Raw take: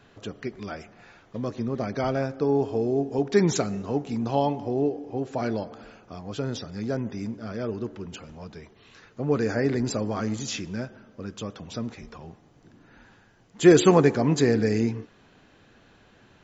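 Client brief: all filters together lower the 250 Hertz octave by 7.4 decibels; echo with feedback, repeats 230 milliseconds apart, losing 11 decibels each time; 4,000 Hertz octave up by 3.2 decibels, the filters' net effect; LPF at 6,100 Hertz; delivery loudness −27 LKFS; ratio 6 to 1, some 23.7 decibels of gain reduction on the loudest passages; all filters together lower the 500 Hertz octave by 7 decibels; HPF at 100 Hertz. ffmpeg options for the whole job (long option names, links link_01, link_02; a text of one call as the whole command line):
ffmpeg -i in.wav -af "highpass=100,lowpass=6100,equalizer=frequency=250:width_type=o:gain=-8,equalizer=frequency=500:width_type=o:gain=-6,equalizer=frequency=4000:width_type=o:gain=5,acompressor=threshold=-43dB:ratio=6,aecho=1:1:230|460|690:0.282|0.0789|0.0221,volume=19.5dB" out.wav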